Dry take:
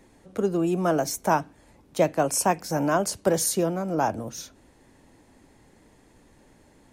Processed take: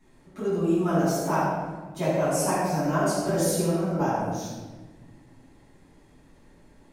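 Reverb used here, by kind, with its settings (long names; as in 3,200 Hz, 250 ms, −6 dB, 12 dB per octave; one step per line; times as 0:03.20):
rectangular room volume 950 cubic metres, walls mixed, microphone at 9.8 metres
level −16 dB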